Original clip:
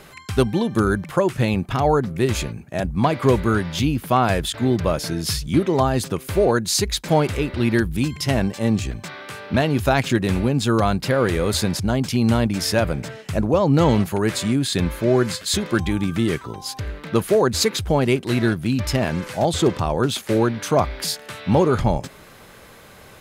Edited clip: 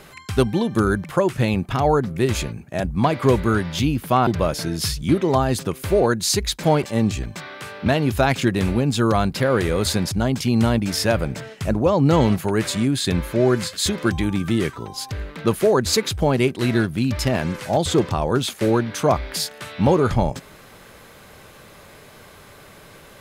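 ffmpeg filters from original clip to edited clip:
-filter_complex "[0:a]asplit=3[a][b][c];[a]atrim=end=4.272[d];[b]atrim=start=4.718:end=7.282[e];[c]atrim=start=8.508[f];[d][e]acrossfade=d=0.004:c1=hsin:c2=hsin[g];[g][f]acrossfade=d=0.004:c1=hsin:c2=hsin"

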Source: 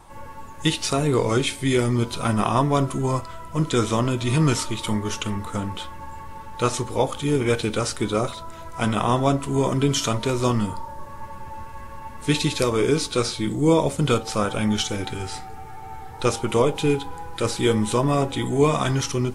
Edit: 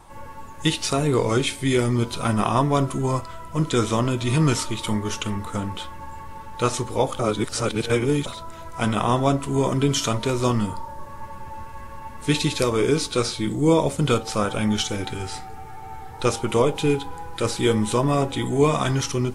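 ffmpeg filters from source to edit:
-filter_complex "[0:a]asplit=3[a][b][c];[a]atrim=end=7.192[d];[b]atrim=start=7.188:end=8.262,asetpts=PTS-STARTPTS,areverse[e];[c]atrim=start=8.258[f];[d][e]acrossfade=d=0.004:c1=hsin:c2=hsin[g];[g][f]acrossfade=d=0.004:c1=hsin:c2=hsin"

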